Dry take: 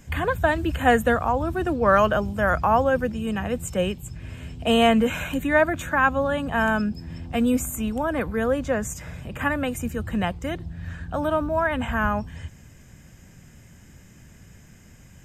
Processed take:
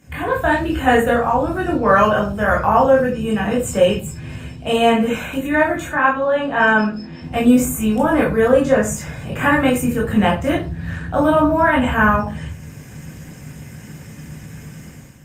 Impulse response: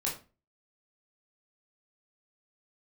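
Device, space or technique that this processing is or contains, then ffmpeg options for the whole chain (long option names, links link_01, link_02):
far-field microphone of a smart speaker: -filter_complex "[0:a]asettb=1/sr,asplit=3[link_01][link_02][link_03];[link_01]atrim=end=5.924[link_04];[link_02]atrim=start=5.92:end=7.22,asetpts=PTS-STARTPTS,afade=type=in:duration=0.004:curve=qsin,afade=type=out:start_time=1.296:duration=0.004:curve=qsin,acrossover=split=190 5900:gain=0.178 1 0.1[link_05][link_06][link_07];[link_05][link_06][link_07]amix=inputs=3:normalize=0[link_08];[link_03]atrim=start=7.216[link_09];[link_04][link_08]acrossfade=duration=0.004:curve1=hsin:curve2=qsin[link_10];[link_10][link_09]acrossfade=duration=0.004:curve1=qsin:curve2=hsin[link_11];[1:a]atrim=start_sample=2205[link_12];[link_11][link_12]afir=irnorm=-1:irlink=0,highpass=82,dynaudnorm=framelen=120:gausssize=7:maxgain=12dB,volume=-1.5dB" -ar 48000 -c:a libopus -b:a 32k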